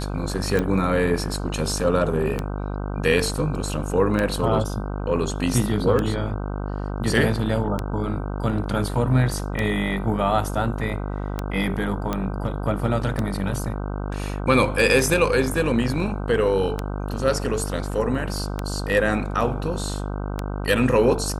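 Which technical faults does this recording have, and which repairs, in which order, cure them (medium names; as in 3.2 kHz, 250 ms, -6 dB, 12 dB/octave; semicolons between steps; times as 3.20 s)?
buzz 50 Hz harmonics 31 -28 dBFS
tick 33 1/3 rpm -11 dBFS
12.13 s: pop -11 dBFS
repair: de-click; de-hum 50 Hz, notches 31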